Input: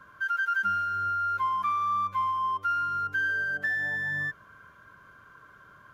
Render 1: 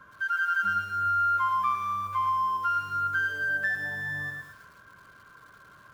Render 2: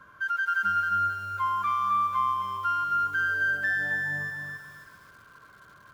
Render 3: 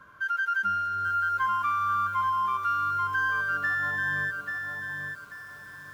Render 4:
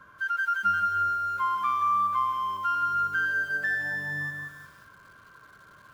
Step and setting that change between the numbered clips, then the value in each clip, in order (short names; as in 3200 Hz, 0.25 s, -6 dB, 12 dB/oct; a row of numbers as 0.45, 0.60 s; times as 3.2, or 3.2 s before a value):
lo-fi delay, time: 0.111, 0.268, 0.838, 0.178 s